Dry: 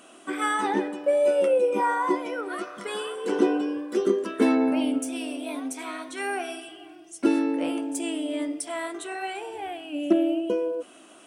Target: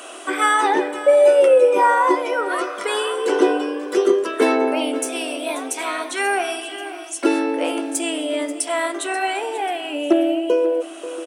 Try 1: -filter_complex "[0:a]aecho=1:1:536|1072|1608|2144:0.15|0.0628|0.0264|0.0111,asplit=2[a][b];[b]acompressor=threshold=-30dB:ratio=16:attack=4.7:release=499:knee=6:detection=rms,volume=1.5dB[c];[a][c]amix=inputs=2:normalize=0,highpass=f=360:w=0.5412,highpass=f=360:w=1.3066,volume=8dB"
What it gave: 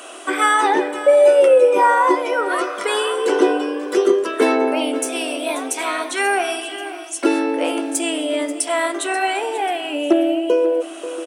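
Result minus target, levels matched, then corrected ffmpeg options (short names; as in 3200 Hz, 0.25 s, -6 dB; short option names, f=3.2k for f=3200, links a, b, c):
compressor: peak gain reduction -7.5 dB
-filter_complex "[0:a]aecho=1:1:536|1072|1608|2144:0.15|0.0628|0.0264|0.0111,asplit=2[a][b];[b]acompressor=threshold=-38dB:ratio=16:attack=4.7:release=499:knee=6:detection=rms,volume=1.5dB[c];[a][c]amix=inputs=2:normalize=0,highpass=f=360:w=0.5412,highpass=f=360:w=1.3066,volume=8dB"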